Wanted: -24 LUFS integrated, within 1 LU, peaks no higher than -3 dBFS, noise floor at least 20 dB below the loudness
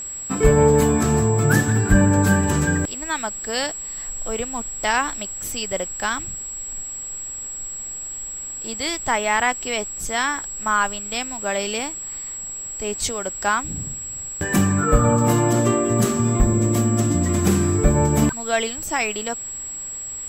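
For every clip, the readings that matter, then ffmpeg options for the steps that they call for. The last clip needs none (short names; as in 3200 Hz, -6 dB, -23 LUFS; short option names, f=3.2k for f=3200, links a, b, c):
steady tone 7700 Hz; tone level -29 dBFS; loudness -21.5 LUFS; peak -3.0 dBFS; loudness target -24.0 LUFS
-> -af "bandreject=f=7.7k:w=30"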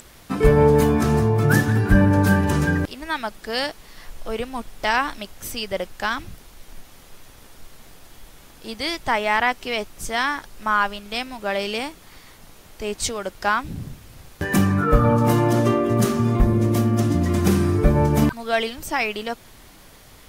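steady tone none; loudness -21.0 LUFS; peak -3.5 dBFS; loudness target -24.0 LUFS
-> -af "volume=-3dB"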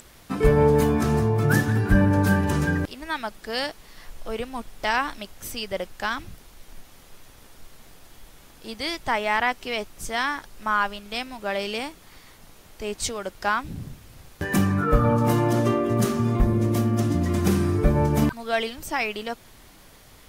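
loudness -24.0 LUFS; peak -6.5 dBFS; noise floor -50 dBFS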